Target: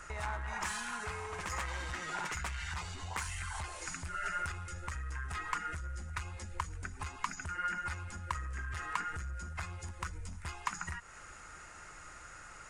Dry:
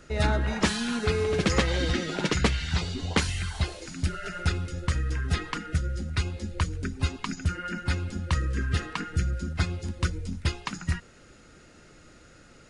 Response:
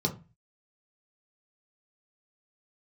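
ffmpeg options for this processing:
-af "asoftclip=type=tanh:threshold=-24dB,acompressor=threshold=-38dB:ratio=6,equalizer=frequency=125:width_type=o:width=1:gain=-5,equalizer=frequency=250:width_type=o:width=1:gain=-12,equalizer=frequency=500:width_type=o:width=1:gain=-7,equalizer=frequency=1000:width_type=o:width=1:gain=11,equalizer=frequency=2000:width_type=o:width=1:gain=4,equalizer=frequency=4000:width_type=o:width=1:gain=-8,equalizer=frequency=8000:width_type=o:width=1:gain=8,volume=1dB"

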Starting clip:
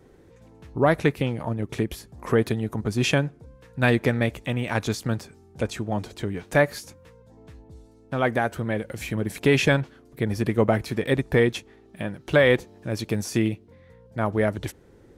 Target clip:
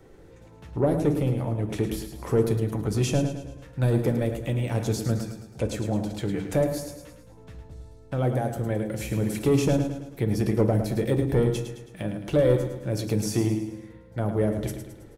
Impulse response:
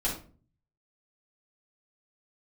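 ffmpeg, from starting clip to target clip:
-filter_complex "[0:a]equalizer=frequency=230:width_type=o:width=0.26:gain=-5.5,acrossover=split=560|5600[link_01][link_02][link_03];[link_02]acompressor=threshold=-41dB:ratio=6[link_04];[link_01][link_04][link_03]amix=inputs=3:normalize=0,asoftclip=type=tanh:threshold=-15dB,aecho=1:1:108|216|324|432|540:0.376|0.18|0.0866|0.0416|0.02,asplit=2[link_05][link_06];[1:a]atrim=start_sample=2205,afade=type=out:start_time=0.23:duration=0.01,atrim=end_sample=10584[link_07];[link_06][link_07]afir=irnorm=-1:irlink=0,volume=-12dB[link_08];[link_05][link_08]amix=inputs=2:normalize=0"

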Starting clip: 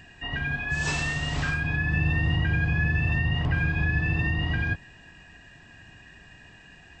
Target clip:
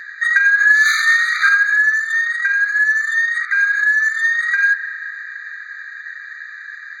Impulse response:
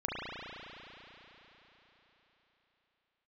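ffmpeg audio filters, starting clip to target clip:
-filter_complex "[0:a]adynamicsmooth=sensitivity=3.5:basefreq=3100,asplit=2[link_01][link_02];[1:a]atrim=start_sample=2205,adelay=7[link_03];[link_02][link_03]afir=irnorm=-1:irlink=0,volume=-24dB[link_04];[link_01][link_04]amix=inputs=2:normalize=0,alimiter=level_in=23dB:limit=-1dB:release=50:level=0:latency=1,afftfilt=real='re*eq(mod(floor(b*sr/1024/1200),2),1)':imag='im*eq(mod(floor(b*sr/1024/1200),2),1)':win_size=1024:overlap=0.75"

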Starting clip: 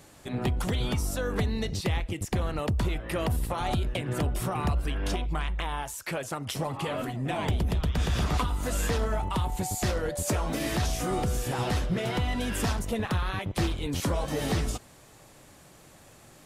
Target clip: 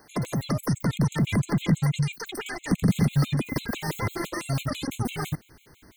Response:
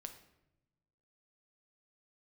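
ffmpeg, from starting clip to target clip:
-af "asubboost=boost=3.5:cutoff=98,asetrate=121716,aresample=44100,afftfilt=real='re*gt(sin(2*PI*6*pts/sr)*(1-2*mod(floor(b*sr/1024/2100),2)),0)':imag='im*gt(sin(2*PI*6*pts/sr)*(1-2*mod(floor(b*sr/1024/2100),2)),0)':win_size=1024:overlap=0.75"

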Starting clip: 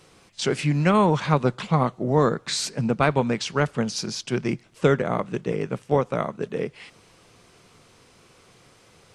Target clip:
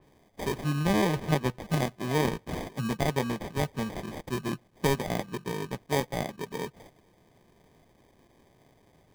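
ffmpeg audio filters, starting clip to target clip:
ffmpeg -i in.wav -af "bandreject=frequency=490:width=12,acrusher=samples=32:mix=1:aa=0.000001,adynamicequalizer=threshold=0.00891:dfrequency=4300:dqfactor=0.7:tfrequency=4300:tqfactor=0.7:attack=5:release=100:ratio=0.375:range=3:mode=cutabove:tftype=highshelf,volume=-6.5dB" out.wav

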